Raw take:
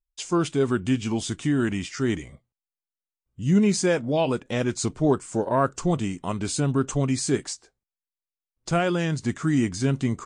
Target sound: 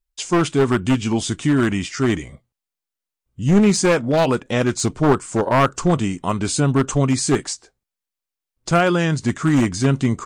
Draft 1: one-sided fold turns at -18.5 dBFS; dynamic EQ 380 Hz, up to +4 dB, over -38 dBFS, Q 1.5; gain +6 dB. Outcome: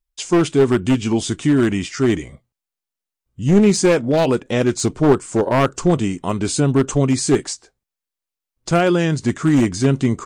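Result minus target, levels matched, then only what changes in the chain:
1000 Hz band -3.5 dB
change: dynamic EQ 1200 Hz, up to +4 dB, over -38 dBFS, Q 1.5

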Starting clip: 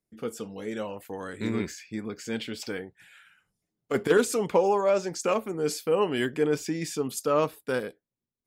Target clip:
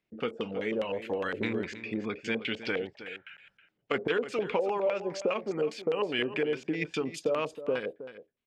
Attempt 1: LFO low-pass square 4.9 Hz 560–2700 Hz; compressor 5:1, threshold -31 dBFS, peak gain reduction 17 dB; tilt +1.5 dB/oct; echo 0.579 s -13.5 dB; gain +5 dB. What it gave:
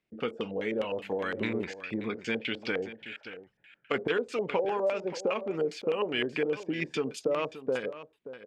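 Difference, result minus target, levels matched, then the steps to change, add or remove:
echo 0.26 s late
change: echo 0.319 s -13.5 dB

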